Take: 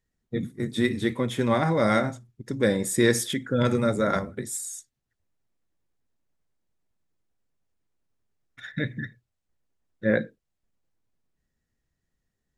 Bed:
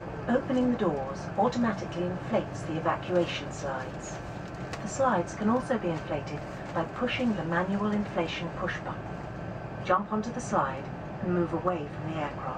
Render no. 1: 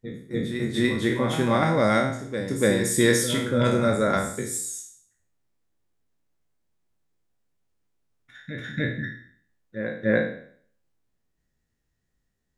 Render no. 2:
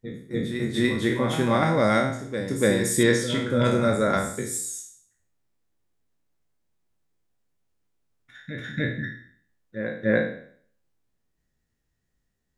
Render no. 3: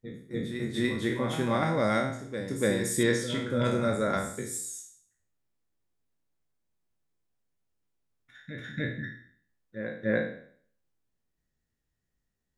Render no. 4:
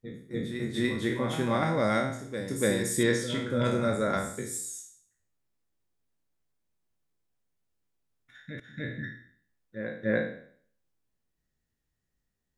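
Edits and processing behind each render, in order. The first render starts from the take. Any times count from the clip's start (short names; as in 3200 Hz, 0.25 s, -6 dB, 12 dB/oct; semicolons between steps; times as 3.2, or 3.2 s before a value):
spectral trails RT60 0.56 s; reverse echo 0.291 s -9 dB
3.03–3.5 air absorption 74 m
gain -5.5 dB
2.1–2.82 high shelf 8600 Hz -> 6000 Hz +7.5 dB; 8.6–9.02 fade in, from -16 dB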